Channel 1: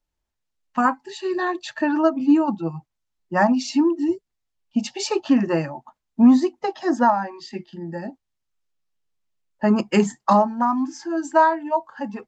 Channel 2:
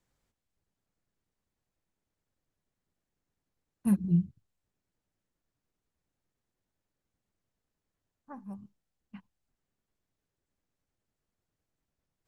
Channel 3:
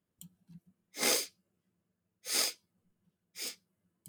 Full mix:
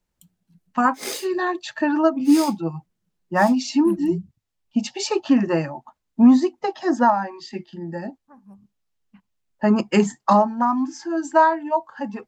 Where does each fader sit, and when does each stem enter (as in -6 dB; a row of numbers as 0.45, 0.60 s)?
+0.5, -4.0, -2.0 dB; 0.00, 0.00, 0.00 s